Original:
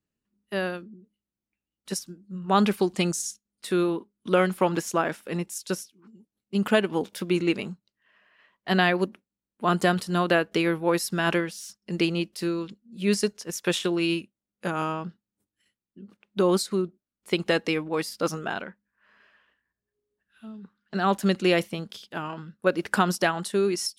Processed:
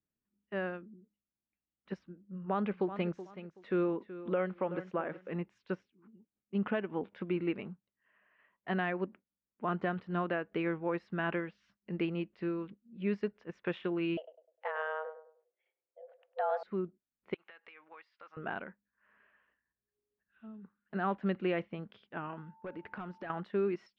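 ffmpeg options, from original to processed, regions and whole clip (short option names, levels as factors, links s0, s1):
-filter_complex "[0:a]asettb=1/sr,asplit=3[s0][s1][s2];[s0]atrim=end=2.074[s3];[s1]atrim=start=2.07:end=5.3,asetpts=PTS-STARTPTS,afade=t=in:d=0.004:c=qsin,afade=t=out:st=3.226:d=0.004:c=qsin,equalizer=f=530:t=o:w=0.37:g=5.5,aecho=1:1:376|752:0.188|0.0414,atrim=end_sample=142443[s4];[s2]atrim=start=5.296[s5];[s3][s4]acrossfade=d=0.004:c1=hsin:c2=qsin[s6];[s6][s5]acrossfade=d=0.004:c1=qsin:c2=hsin,asettb=1/sr,asplit=3[s7][s8][s9];[s7]atrim=end=14.174[s10];[s8]atrim=start=14.17:end=16.63,asetpts=PTS-STARTPTS,afade=t=in:d=0.004:c=qsin,afade=t=out:st=2.456:d=0.004:c=qsin,asplit=2[s11][s12];[s12]adelay=101,lowpass=f=910:p=1,volume=0.316,asplit=2[s13][s14];[s14]adelay=101,lowpass=f=910:p=1,volume=0.37,asplit=2[s15][s16];[s16]adelay=101,lowpass=f=910:p=1,volume=0.37,asplit=2[s17][s18];[s18]adelay=101,lowpass=f=910:p=1,volume=0.37[s19];[s11][s13][s15][s17][s19]amix=inputs=5:normalize=0,atrim=end_sample=108486,afreqshift=310[s20];[s9]atrim=start=16.626[s21];[s10][s20]acrossfade=d=0.004:c1=hsin:c2=qsin[s22];[s22][s21]acrossfade=d=0.004:c1=qsin:c2=hsin,asettb=1/sr,asplit=3[s23][s24][s25];[s23]atrim=end=17.344[s26];[s24]atrim=start=17.34:end=18.37,asetpts=PTS-STARTPTS,afade=t=in:d=0.004:c=qsin,afade=t=out:st=1.026:d=0.004:c=qsin,highpass=1200,acompressor=threshold=0.01:ratio=8:attack=3.2:release=140:knee=1:detection=peak[s27];[s25]atrim=start=18.366[s28];[s26][s27]acrossfade=d=0.004:c1=hsin:c2=qsin[s29];[s29][s28]acrossfade=d=0.004:c1=qsin:c2=hsin,asettb=1/sr,asplit=3[s30][s31][s32];[s30]atrim=end=22.364[s33];[s31]atrim=start=22.36:end=23.3,asetpts=PTS-STARTPTS,afade=t=in:d=0.004:c=qsin,afade=t=out:st=0.936:d=0.004:c=qsin,asoftclip=type=hard:threshold=0.112,acompressor=threshold=0.0251:ratio=10:attack=3.2:release=140:knee=1:detection=peak,aeval=exprs='val(0)+0.00251*sin(2*PI*890*n/s)':c=same[s34];[s32]atrim=start=23.296[s35];[s33][s34]acrossfade=d=0.004:c1=hsin:c2=qsin[s36];[s36][s35]acrossfade=d=0.004:c1=qsin:c2=hsin,lowpass=f=2400:w=0.5412,lowpass=f=2400:w=1.3066,alimiter=limit=0.168:level=0:latency=1:release=386,volume=0.422"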